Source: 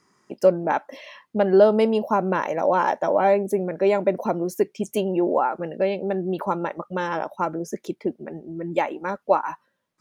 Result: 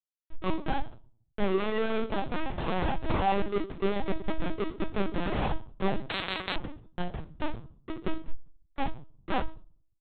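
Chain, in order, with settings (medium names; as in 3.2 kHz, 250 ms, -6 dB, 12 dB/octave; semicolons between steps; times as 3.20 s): comb filter that takes the minimum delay 2.5 ms; 1.95–2.68 s: high-pass 470 Hz 24 dB/octave; 4.32–5.34 s: dynamic bell 1 kHz, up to +6 dB, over -39 dBFS, Q 1.1; Schmitt trigger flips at -21 dBFS; doubling 27 ms -6 dB; reverberation RT60 0.45 s, pre-delay 3 ms, DRR 3.5 dB; LPC vocoder at 8 kHz pitch kept; 6.09–6.56 s: spectrum-flattening compressor 10:1; trim -7 dB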